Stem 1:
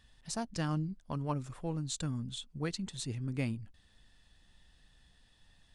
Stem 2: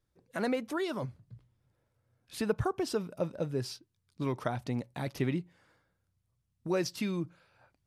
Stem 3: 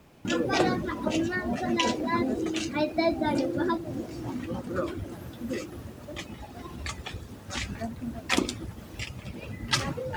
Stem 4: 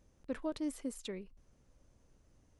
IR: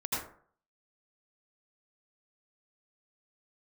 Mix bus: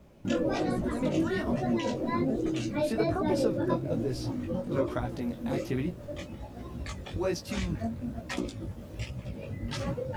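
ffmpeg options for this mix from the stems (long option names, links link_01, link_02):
-filter_complex "[0:a]lowpass=1300,acompressor=threshold=-41dB:ratio=6,adelay=450,volume=1dB[link_01];[1:a]highpass=frequency=340:poles=1,adelay=500,volume=1.5dB[link_02];[2:a]equalizer=frequency=560:width=4.7:gain=9,alimiter=limit=-16.5dB:level=0:latency=1:release=132,volume=-4dB[link_03];[3:a]volume=-1dB,asplit=2[link_04][link_05];[link_05]apad=whole_len=368894[link_06];[link_02][link_06]sidechaincompress=threshold=-47dB:ratio=8:attack=16:release=238[link_07];[link_01][link_07][link_03][link_04]amix=inputs=4:normalize=0,lowshelf=frequency=410:gain=9,flanger=delay=16:depth=6:speed=1.2"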